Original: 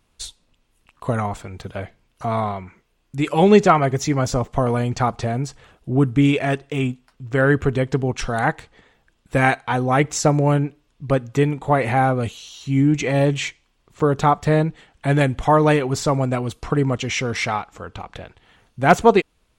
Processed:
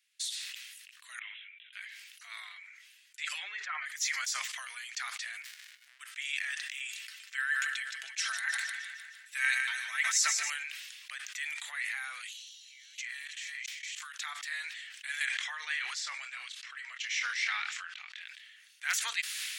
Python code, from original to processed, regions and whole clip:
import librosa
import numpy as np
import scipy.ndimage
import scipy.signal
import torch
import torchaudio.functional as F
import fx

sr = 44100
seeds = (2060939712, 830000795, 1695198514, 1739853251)

y = fx.chain(x, sr, fx.bandpass_q(hz=2900.0, q=3.2),
    fx.resample_bad(factor=6, down='none', up='filtered'),
    fx.detune_double(cents=13), at=(1.19, 1.73))
y = fx.chain(y, sr, fx.env_lowpass_down(base_hz=1500.0, full_db=-9.5),
    fx.comb(ms=6.7, depth=0.49), at=(2.5, 3.86))
y = fx.tone_stack(y, sr, knobs='6-0-2', at=(5.41, 5.99), fade=0.02)
y = fx.dmg_tone(y, sr, hz=730.0, level_db=-65.0, at=(5.41, 5.99), fade=0.02)
y = fx.running_max(y, sr, window=65, at=(5.41, 5.99), fade=0.02)
y = fx.chain(y, sr, fx.comb(ms=4.5, depth=0.49),
    fx.echo_split(split_hz=810.0, low_ms=96, high_ms=153, feedback_pct=52, wet_db=-13.5), at=(6.91, 10.5))
y = fx.chain(y, sr, fx.reverse_delay(ms=333, wet_db=-1),
    fx.highpass(hz=880.0, slope=24),
    fx.level_steps(step_db=17), at=(12.33, 14.14))
y = fx.chain(y, sr, fx.air_absorb(metres=87.0),
    fx.doubler(ms=24.0, db=-11.5), at=(15.25, 18.21))
y = scipy.signal.sosfilt(scipy.signal.cheby1(4, 1.0, 1800.0, 'highpass', fs=sr, output='sos'), y)
y = fx.dynamic_eq(y, sr, hz=2600.0, q=1.3, threshold_db=-41.0, ratio=4.0, max_db=-5)
y = fx.sustainer(y, sr, db_per_s=31.0)
y = F.gain(torch.from_numpy(y), -3.0).numpy()